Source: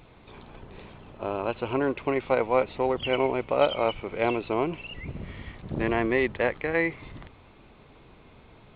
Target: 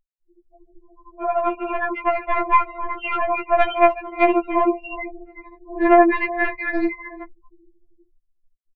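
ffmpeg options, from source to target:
-filter_complex "[0:a]asetnsamples=n=441:p=0,asendcmd='4.73 highshelf g -11',highshelf=f=3k:g=-6,tremolo=f=13:d=0.6,dynaudnorm=f=180:g=11:m=9dB,asplit=2[a][b];[b]adelay=370,highpass=300,lowpass=3.4k,asoftclip=type=hard:threshold=-12.5dB,volume=-16dB[c];[a][c]amix=inputs=2:normalize=0,acontrast=71,afftfilt=real='re*gte(hypot(re,im),0.0398)':imag='im*gte(hypot(re,im),0.0398)':win_size=1024:overlap=0.75,equalizer=f=125:t=o:w=1:g=-7,equalizer=f=250:t=o:w=1:g=-10,equalizer=f=500:t=o:w=1:g=3,equalizer=f=1k:t=o:w=1:g=4,equalizer=f=2k:t=o:w=1:g=7,equalizer=f=4k:t=o:w=1:g=-9,aeval=exprs='1.58*(cos(1*acos(clip(val(0)/1.58,-1,1)))-cos(1*PI/2))+0.2*(cos(2*acos(clip(val(0)/1.58,-1,1)))-cos(2*PI/2))+0.0158*(cos(4*acos(clip(val(0)/1.58,-1,1)))-cos(4*PI/2))+0.0112*(cos(6*acos(clip(val(0)/1.58,-1,1)))-cos(6*PI/2))':c=same,bandreject=f=1.1k:w=25,afftfilt=real='re*4*eq(mod(b,16),0)':imag='im*4*eq(mod(b,16),0)':win_size=2048:overlap=0.75,volume=-1.5dB"

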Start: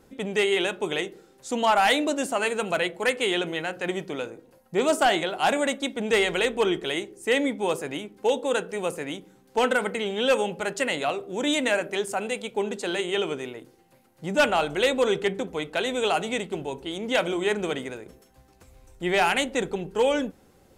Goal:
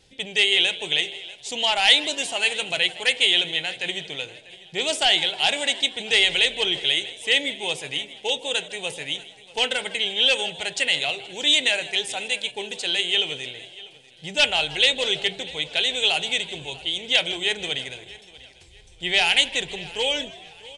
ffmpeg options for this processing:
-filter_complex "[0:a]asplit=2[a][b];[b]asplit=4[c][d][e][f];[c]adelay=158,afreqshift=95,volume=-18dB[g];[d]adelay=316,afreqshift=190,volume=-23.8dB[h];[e]adelay=474,afreqshift=285,volume=-29.7dB[i];[f]adelay=632,afreqshift=380,volume=-35.5dB[j];[g][h][i][j]amix=inputs=4:normalize=0[k];[a][k]amix=inputs=2:normalize=0,aresample=22050,aresample=44100,firequalizer=gain_entry='entry(140,0);entry(210,-12);entry(420,-7);entry(820,-4);entry(1200,-13);entry(1800,1);entry(3100,13);entry(7000,4)':delay=0.05:min_phase=1,asplit=2[l][m];[m]aecho=0:1:643|1286|1929:0.1|0.034|0.0116[n];[l][n]amix=inputs=2:normalize=0"

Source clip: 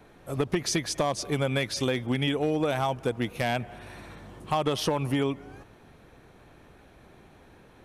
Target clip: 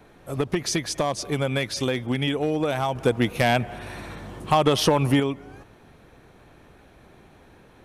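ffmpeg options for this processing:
-filter_complex "[0:a]asettb=1/sr,asplit=3[a][b][c];[a]atrim=end=2.954[d];[b]atrim=start=2.95:end=5.2,asetpts=PTS-STARTPTS,afade=t=in:d=0.004:c=qsin,afade=t=out:st=2.246:d=0.004:c=qsin,acontrast=35[e];[c]atrim=start=5.196[f];[d][e]acrossfade=d=0.004:c1=hsin:c2=qsin[g];[g][f]acrossfade=d=0.004:c1=qsin:c2=hsin,volume=2dB"

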